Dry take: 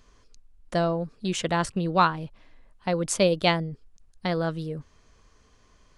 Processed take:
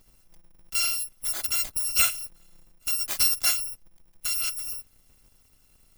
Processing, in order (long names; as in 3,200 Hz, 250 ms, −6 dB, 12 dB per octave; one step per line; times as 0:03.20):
samples in bit-reversed order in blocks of 256 samples
level −1.5 dB